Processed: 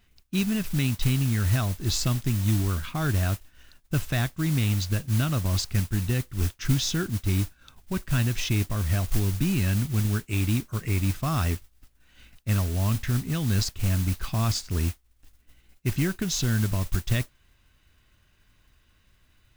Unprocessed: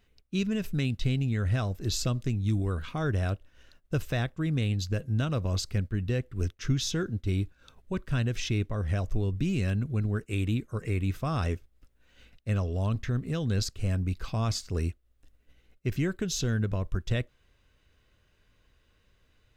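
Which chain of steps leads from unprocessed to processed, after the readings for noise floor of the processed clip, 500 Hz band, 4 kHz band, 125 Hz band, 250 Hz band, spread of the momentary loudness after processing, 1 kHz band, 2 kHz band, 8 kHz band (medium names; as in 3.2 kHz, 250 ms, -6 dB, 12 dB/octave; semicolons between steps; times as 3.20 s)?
-63 dBFS, -1.5 dB, +5.0 dB, +4.0 dB, +3.0 dB, 5 LU, +3.5 dB, +4.5 dB, +6.5 dB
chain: peaking EQ 480 Hz -10.5 dB 0.57 oct; modulation noise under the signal 15 dB; trim +4 dB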